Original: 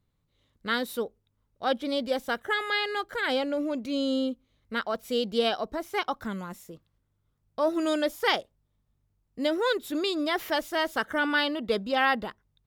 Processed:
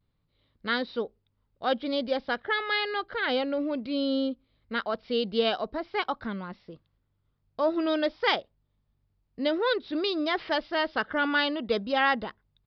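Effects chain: vibrato 0.52 Hz 35 cents; resampled via 11.025 kHz

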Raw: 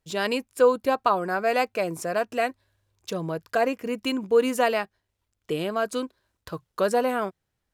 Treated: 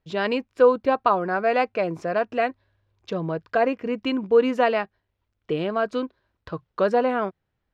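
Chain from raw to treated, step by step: distance through air 230 m; trim +3 dB

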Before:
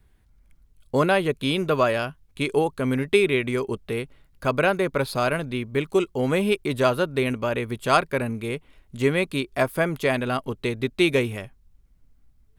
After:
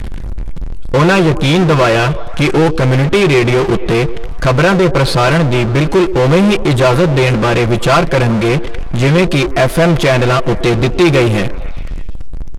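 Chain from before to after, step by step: bass shelf 120 Hz +10 dB; comb 5.9 ms, depth 70%; power-law waveshaper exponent 0.35; distance through air 56 m; repeats whose band climbs or falls 122 ms, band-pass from 360 Hz, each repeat 0.7 oct, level -11.5 dB

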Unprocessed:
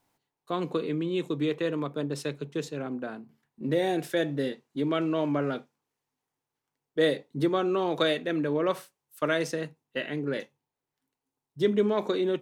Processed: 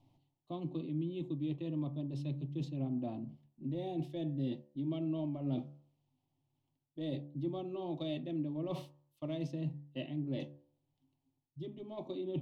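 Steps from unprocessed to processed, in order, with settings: in parallel at -9.5 dB: hard clipper -19.5 dBFS, distortion -19 dB; on the sum: FFT filter 180 Hz 0 dB, 340 Hz -8 dB, 990 Hz -14 dB, 1.9 kHz -15 dB, 3.1 kHz -7 dB, 8.1 kHz -26 dB; reverse; compression 10:1, threshold -44 dBFS, peak gain reduction 20 dB; reverse; tilt shelf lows +3 dB; static phaser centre 300 Hz, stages 8; de-hum 72.46 Hz, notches 26; trim +10 dB

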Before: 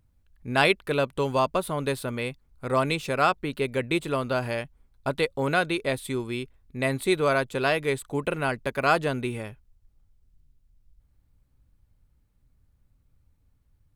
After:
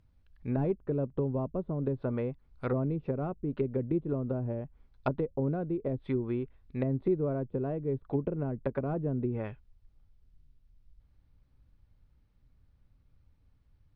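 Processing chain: Savitzky-Golay filter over 15 samples; wavefolder -13.5 dBFS; low-pass that closes with the level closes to 320 Hz, closed at -24 dBFS

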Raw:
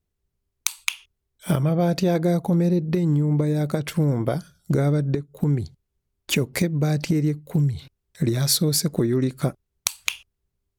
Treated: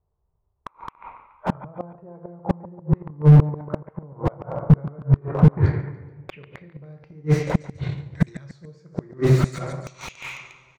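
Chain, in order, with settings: gate -45 dBFS, range -8 dB; ten-band graphic EQ 125 Hz +5 dB, 250 Hz -10 dB, 500 Hz +4 dB, 1 kHz +5 dB, 2 kHz +8 dB, 8 kHz +8 dB; two-slope reverb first 0.64 s, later 2.1 s, from -18 dB, DRR 3 dB; dynamic bell 690 Hz, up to -3 dB, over -38 dBFS, Q 2.2; in parallel at -2 dB: compression 6:1, threshold -29 dBFS, peak gain reduction 17.5 dB; on the sum: waveshaping leveller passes 1; inverted gate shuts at -6 dBFS, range -36 dB; low-pass sweep 970 Hz -> 6.6 kHz, 5.20–7.33 s; hard clipper -6 dBFS, distortion -13 dB; level-controlled noise filter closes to 910 Hz, open at -15 dBFS; on a send: feedback delay 142 ms, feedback 45%, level -19.5 dB; on the sum: slew-rate limiter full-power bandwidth 38 Hz; trim +5.5 dB

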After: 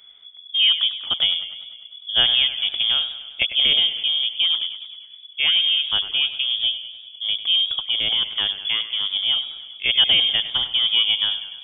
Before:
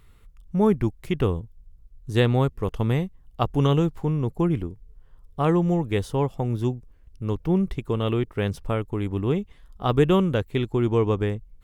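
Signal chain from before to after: frequency inversion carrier 3.4 kHz; modulated delay 100 ms, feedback 63%, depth 56 cents, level -13 dB; trim +1.5 dB

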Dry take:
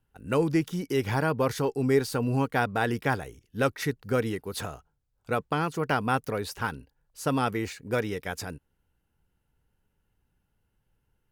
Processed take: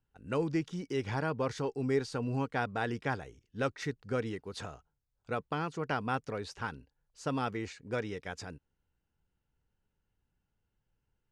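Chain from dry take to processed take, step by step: low-pass 7.6 kHz 24 dB/octave; trim -7 dB

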